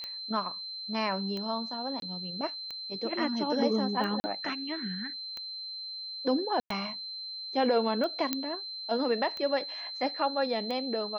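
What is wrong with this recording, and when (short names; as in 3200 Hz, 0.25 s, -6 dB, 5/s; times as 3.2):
tick 45 rpm -24 dBFS
tone 4100 Hz -37 dBFS
2–2.02 gap 22 ms
4.2–4.24 gap 40 ms
6.6–6.7 gap 0.103 s
8.33 pop -12 dBFS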